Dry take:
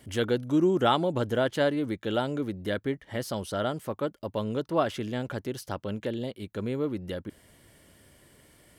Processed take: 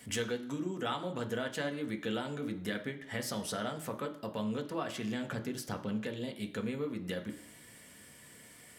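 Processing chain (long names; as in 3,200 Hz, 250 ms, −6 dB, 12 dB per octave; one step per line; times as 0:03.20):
0:05.30–0:06.05: low-shelf EQ 470 Hz +6.5 dB
downward compressor 4 to 1, threshold −34 dBFS, peak gain reduction 13.5 dB
convolution reverb, pre-delay 3 ms, DRR 4.5 dB
level +3.5 dB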